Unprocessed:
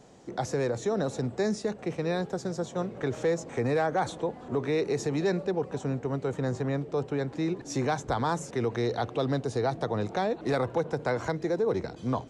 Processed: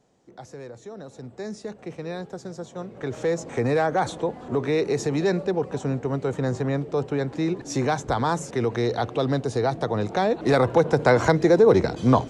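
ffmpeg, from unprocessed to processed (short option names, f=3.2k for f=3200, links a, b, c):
-af "volume=11.5dB,afade=t=in:st=1.09:d=0.65:silence=0.421697,afade=t=in:st=2.85:d=0.66:silence=0.398107,afade=t=in:st=10.05:d=1.16:silence=0.446684"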